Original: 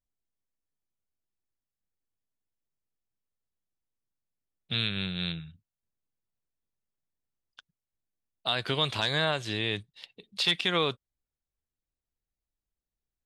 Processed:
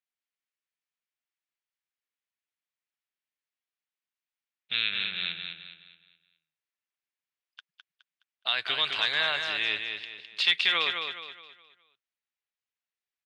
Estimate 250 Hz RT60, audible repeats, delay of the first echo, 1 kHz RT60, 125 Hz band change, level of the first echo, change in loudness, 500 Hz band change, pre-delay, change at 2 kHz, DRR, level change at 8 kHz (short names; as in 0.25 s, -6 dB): none, 4, 0.209 s, none, -20.0 dB, -6.0 dB, +1.5 dB, -8.5 dB, none, +5.0 dB, none, n/a